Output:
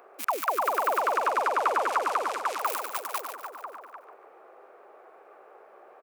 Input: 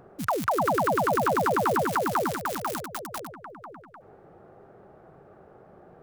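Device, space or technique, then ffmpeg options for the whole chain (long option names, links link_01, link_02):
laptop speaker: -filter_complex "[0:a]highpass=frequency=420:width=0.5412,highpass=frequency=420:width=1.3066,equalizer=frequency=1100:width_type=o:width=0.46:gain=6,equalizer=frequency=2400:width_type=o:width=0.54:gain=9,alimiter=limit=-15.5dB:level=0:latency=1:release=383,asettb=1/sr,asplit=3[link_01][link_02][link_03];[link_01]atrim=end=0.994[link_04];[link_02]atrim=start=0.99:end=2.59,asetpts=PTS-STARTPTS,afade=type=in:duration=0.004:curve=qsin,afade=type=out:start_time=1.596:duration=0.004:curve=qsin,lowpass=7400[link_05];[link_03]atrim=start=2.586[link_06];[link_04][link_05]acrossfade=duration=0.004:curve1=hsin:curve2=qsin[link_07];[link_07][link_06]acrossfade=duration=0.004:curve1=qsin:curve2=hsin,highshelf=frequency=9500:gain=7,aecho=1:1:144|288|432|576|720|864:0.355|0.174|0.0852|0.0417|0.0205|0.01"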